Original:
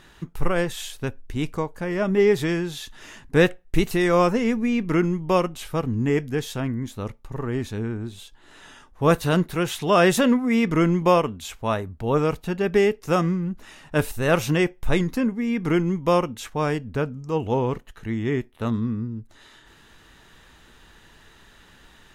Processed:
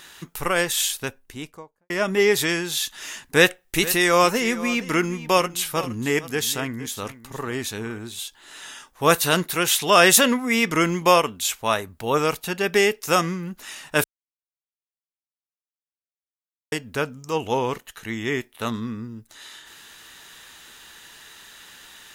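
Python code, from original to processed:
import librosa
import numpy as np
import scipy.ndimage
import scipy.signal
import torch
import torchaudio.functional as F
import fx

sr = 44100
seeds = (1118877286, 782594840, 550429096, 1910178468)

y = fx.studio_fade_out(x, sr, start_s=0.91, length_s=0.99)
y = fx.echo_single(y, sr, ms=464, db=-16.0, at=(3.36, 7.99))
y = fx.edit(y, sr, fx.silence(start_s=14.04, length_s=2.68), tone=tone)
y = fx.tilt_eq(y, sr, slope=3.5)
y = F.gain(torch.from_numpy(y), 3.5).numpy()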